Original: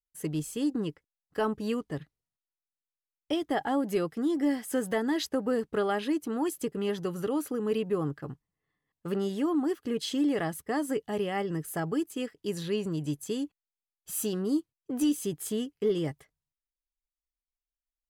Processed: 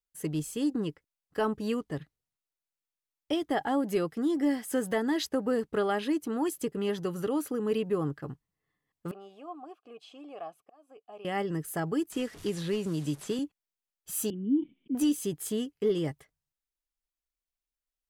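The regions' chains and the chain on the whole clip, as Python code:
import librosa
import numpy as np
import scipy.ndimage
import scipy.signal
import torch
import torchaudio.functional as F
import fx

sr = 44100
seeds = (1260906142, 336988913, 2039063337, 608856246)

y = fx.chain(x, sr, fx.high_shelf(hz=7200.0, db=8.5),
    fx.auto_swell(attack_ms=550.0),
    fx.vowel_filter(vowel='a'), at=(9.11, 11.25))
y = fx.chain(y, sr, fx.delta_mod(bps=64000, step_db=-46.5),
    fx.band_squash(depth_pct=70), at=(12.12, 13.39))
y = fx.chain(y, sr, fx.formant_cascade(vowel='i'),
    fx.low_shelf_res(hz=150.0, db=-10.0, q=3.0),
    fx.sustainer(db_per_s=92.0), at=(14.3, 14.95))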